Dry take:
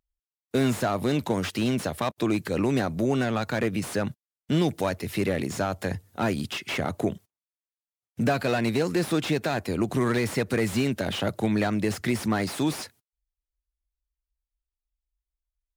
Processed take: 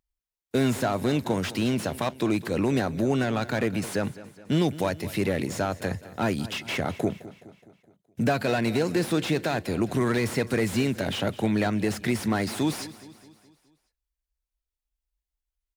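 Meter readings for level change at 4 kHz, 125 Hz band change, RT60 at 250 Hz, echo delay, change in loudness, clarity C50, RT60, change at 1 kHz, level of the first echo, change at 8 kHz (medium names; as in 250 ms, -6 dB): 0.0 dB, 0.0 dB, no reverb, 210 ms, 0.0 dB, no reverb, no reverb, 0.0 dB, -17.0 dB, 0.0 dB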